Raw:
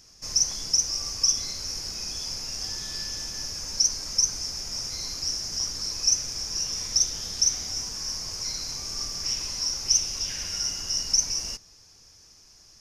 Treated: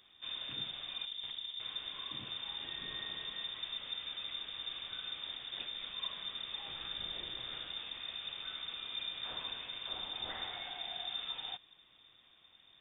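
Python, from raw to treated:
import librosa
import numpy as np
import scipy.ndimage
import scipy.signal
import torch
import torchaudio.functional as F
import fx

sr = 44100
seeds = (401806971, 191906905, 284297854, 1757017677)

y = fx.median_filter(x, sr, points=41, at=(1.05, 1.6))
y = fx.transient(y, sr, attack_db=7, sustain_db=-3, at=(5.33, 6.07))
y = fx.freq_invert(y, sr, carrier_hz=3600)
y = y * 10.0 ** (-2.5 / 20.0)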